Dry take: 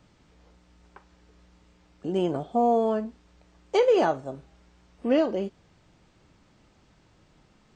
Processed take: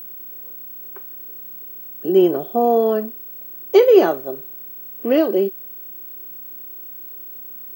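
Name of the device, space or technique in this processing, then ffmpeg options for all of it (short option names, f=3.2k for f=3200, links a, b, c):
old television with a line whistle: -af "highpass=f=180:w=0.5412,highpass=f=180:w=1.3066,equalizer=f=260:t=q:w=4:g=-4,equalizer=f=380:t=q:w=4:g=10,equalizer=f=890:t=q:w=4:g=-6,lowpass=f=6.6k:w=0.5412,lowpass=f=6.6k:w=1.3066,aeval=exprs='val(0)+0.0126*sin(2*PI*15734*n/s)':c=same,volume=5.5dB"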